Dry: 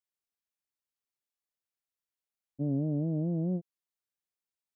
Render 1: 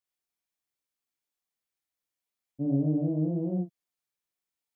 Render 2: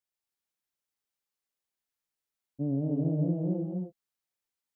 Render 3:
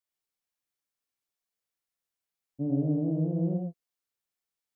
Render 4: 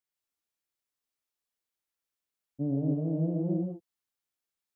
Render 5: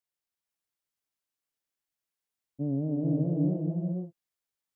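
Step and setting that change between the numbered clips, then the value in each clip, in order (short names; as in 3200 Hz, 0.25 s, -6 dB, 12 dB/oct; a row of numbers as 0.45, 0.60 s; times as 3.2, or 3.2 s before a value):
non-linear reverb, gate: 90, 320, 130, 200, 520 ms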